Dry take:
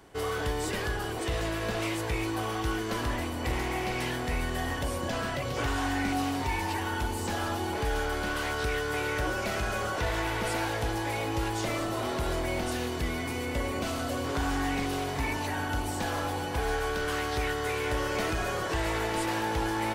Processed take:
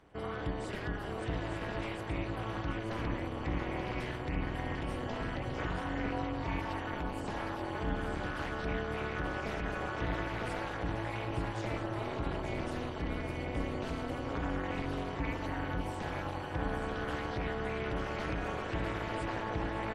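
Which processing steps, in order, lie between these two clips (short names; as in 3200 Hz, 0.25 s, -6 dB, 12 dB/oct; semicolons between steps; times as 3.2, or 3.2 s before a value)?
spectral gate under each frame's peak -30 dB strong; tone controls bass +3 dB, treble -9 dB; tapped delay 0.429/0.568/0.882 s -19/-14.5/-6 dB; AM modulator 230 Hz, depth 95%; gain -3.5 dB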